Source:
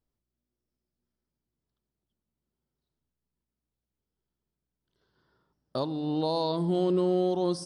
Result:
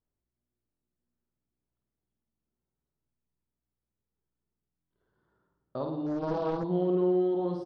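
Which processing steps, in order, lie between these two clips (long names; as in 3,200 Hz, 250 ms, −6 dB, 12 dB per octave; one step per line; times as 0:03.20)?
low-pass filter 1,800 Hz 12 dB per octave
reverse bouncing-ball delay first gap 50 ms, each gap 1.15×, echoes 5
buffer that repeats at 0:00.70/0:04.79, samples 1,024, times 4
0:06.06–0:06.64: highs frequency-modulated by the lows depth 0.67 ms
level −4.5 dB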